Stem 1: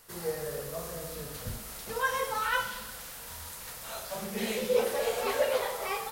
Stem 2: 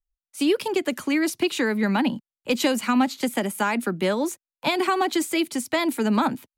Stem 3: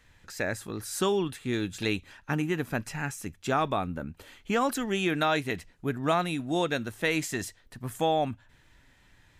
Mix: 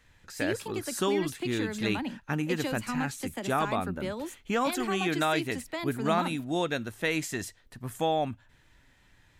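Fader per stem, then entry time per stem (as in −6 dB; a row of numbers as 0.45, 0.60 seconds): muted, −12.0 dB, −1.5 dB; muted, 0.00 s, 0.00 s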